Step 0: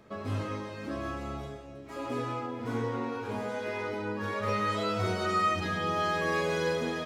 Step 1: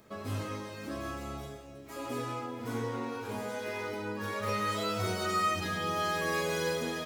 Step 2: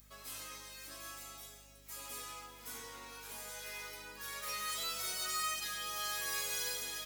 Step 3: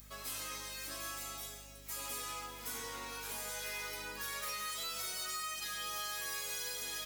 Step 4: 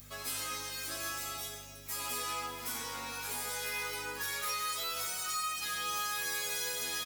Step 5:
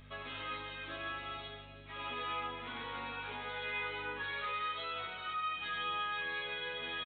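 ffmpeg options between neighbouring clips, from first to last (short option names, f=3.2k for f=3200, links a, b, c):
-af "aemphasis=mode=production:type=50fm,volume=-2.5dB"
-af "aderivative,aeval=exprs='val(0)+0.000447*(sin(2*PI*50*n/s)+sin(2*PI*2*50*n/s)/2+sin(2*PI*3*50*n/s)/3+sin(2*PI*4*50*n/s)/4+sin(2*PI*5*50*n/s)/5)':c=same,volume=5dB"
-af "acompressor=threshold=-43dB:ratio=10,volume=6dB"
-filter_complex "[0:a]asplit=2[a][b];[b]adelay=12,volume=-4dB[c];[a][c]amix=inputs=2:normalize=0,volume=2.5dB"
-af "aresample=8000,aresample=44100"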